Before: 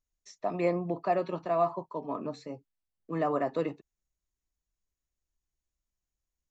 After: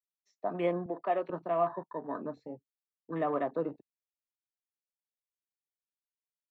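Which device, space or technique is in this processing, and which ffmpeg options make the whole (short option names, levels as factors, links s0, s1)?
over-cleaned archive recording: -filter_complex "[0:a]highpass=150,lowpass=5400,afwtdn=0.00708,asettb=1/sr,asplit=3[s0][s1][s2];[s0]atrim=end=0.864[s3];[s1]atrim=start=0.86:end=1.3,asetpts=PTS-STARTPTS,afade=t=in:d=0.004:c=qsin,afade=t=out:st=0.436:d=0.004:c=qsin,highpass=300[s4];[s2]atrim=start=1.296[s5];[s3][s4]acrossfade=d=0.004:c1=hsin:c2=qsin[s6];[s6][s5]acrossfade=d=0.004:c1=qsin:c2=hsin,volume=0.794"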